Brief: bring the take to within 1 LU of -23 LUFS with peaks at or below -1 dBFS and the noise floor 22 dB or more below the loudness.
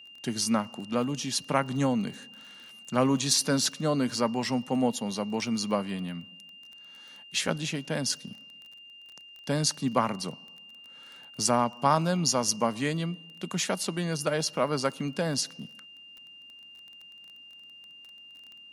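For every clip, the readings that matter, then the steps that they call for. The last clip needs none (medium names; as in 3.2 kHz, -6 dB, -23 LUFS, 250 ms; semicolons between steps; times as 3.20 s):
tick rate 21 per s; steady tone 2.8 kHz; tone level -47 dBFS; loudness -28.5 LUFS; peak level -9.0 dBFS; loudness target -23.0 LUFS
-> de-click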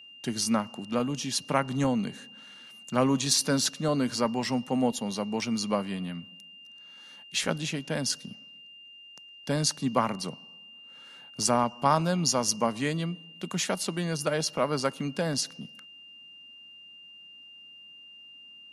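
tick rate 0 per s; steady tone 2.8 kHz; tone level -47 dBFS
-> band-stop 2.8 kHz, Q 30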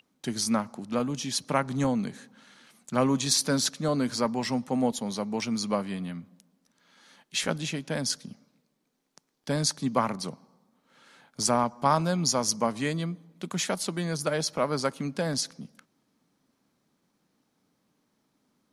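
steady tone not found; loudness -28.5 LUFS; peak level -9.0 dBFS; loudness target -23.0 LUFS
-> trim +5.5 dB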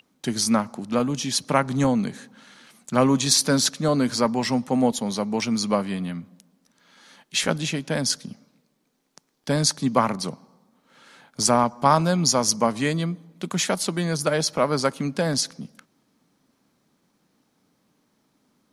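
loudness -23.0 LUFS; peak level -3.5 dBFS; noise floor -70 dBFS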